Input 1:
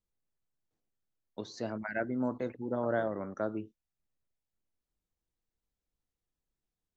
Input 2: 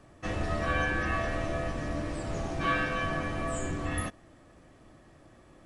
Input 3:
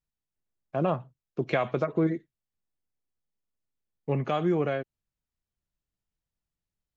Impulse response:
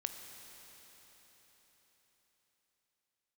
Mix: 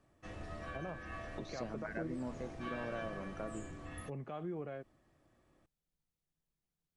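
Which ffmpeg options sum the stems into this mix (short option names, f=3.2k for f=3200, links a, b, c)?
-filter_complex "[0:a]equalizer=f=160:w=3.7:g=12,acompressor=threshold=-42dB:ratio=2,volume=-3dB[a];[1:a]volume=-15dB[b];[2:a]lowpass=f=1.7k:p=1,volume=-12dB[c];[b][c]amix=inputs=2:normalize=0,alimiter=level_in=9dB:limit=-24dB:level=0:latency=1:release=217,volume=-9dB,volume=0dB[d];[a][d]amix=inputs=2:normalize=0"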